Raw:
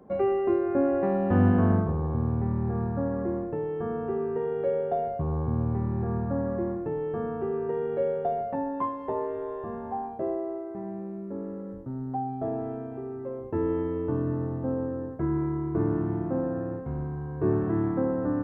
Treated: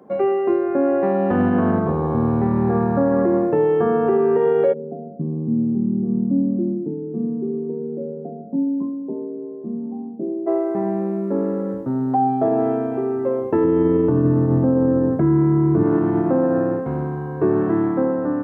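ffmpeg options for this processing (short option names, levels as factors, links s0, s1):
-filter_complex "[0:a]asplit=3[s0][s1][s2];[s0]afade=t=out:st=4.72:d=0.02[s3];[s1]asuperpass=centerf=220:order=4:qfactor=1.6,afade=t=in:st=4.72:d=0.02,afade=t=out:st=10.46:d=0.02[s4];[s2]afade=t=in:st=10.46:d=0.02[s5];[s3][s4][s5]amix=inputs=3:normalize=0,asettb=1/sr,asplit=3[s6][s7][s8];[s6]atrim=end=13.644[s9];[s7]atrim=start=13.64:end=15.83,asetpts=PTS-STARTPTS,afade=t=in:d=0.004:c=qsin,afade=t=out:st=2.186:d=0.004:c=qsin,equalizer=f=120:t=o:w=2.6:g=12[s10];[s8]atrim=start=15.826[s11];[s9][s10]acrossfade=d=0.004:c1=hsin:c2=qsin[s12];[s12][s11]acrossfade=d=0.004:c1=qsin:c2=hsin,highpass=190,dynaudnorm=f=740:g=5:m=2.82,alimiter=limit=0.168:level=0:latency=1:release=81,volume=2"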